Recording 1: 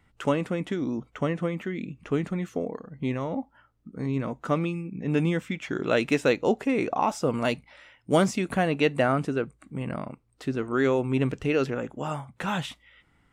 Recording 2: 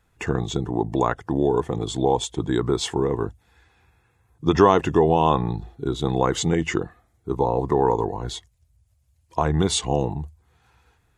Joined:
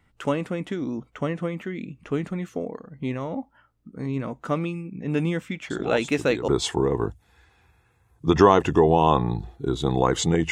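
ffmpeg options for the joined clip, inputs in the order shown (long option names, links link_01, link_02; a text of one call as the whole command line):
ffmpeg -i cue0.wav -i cue1.wav -filter_complex "[1:a]asplit=2[link_01][link_02];[0:a]apad=whole_dur=10.51,atrim=end=10.51,atrim=end=6.482[link_03];[link_02]atrim=start=2.668:end=6.7[link_04];[link_01]atrim=start=1.89:end=2.67,asetpts=PTS-STARTPTS,volume=-11dB,afade=type=in:duration=0.004:curve=hsin,afade=type=out:start_time=0.776:duration=0.004:curve=hsin,adelay=5700[link_05];[link_03][link_04]acrossfade=duration=0.004:curve1=hsin:curve2=hsin[link_06];[link_06][link_05]amix=inputs=2:normalize=0" out.wav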